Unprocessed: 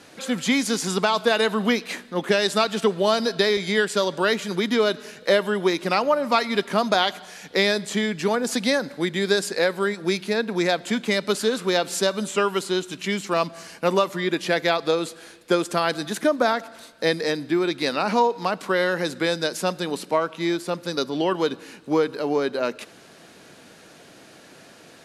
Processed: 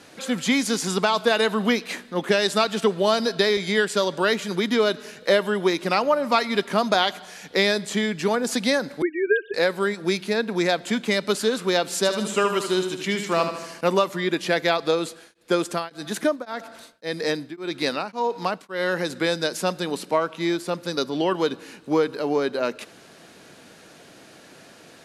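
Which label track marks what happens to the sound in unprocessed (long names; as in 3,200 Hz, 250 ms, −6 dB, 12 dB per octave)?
9.020000	9.540000	three sine waves on the formant tracks
11.970000	13.810000	repeating echo 76 ms, feedback 54%, level −8 dB
15.070000	19.100000	tremolo along a rectified sine nulls at 1.8 Hz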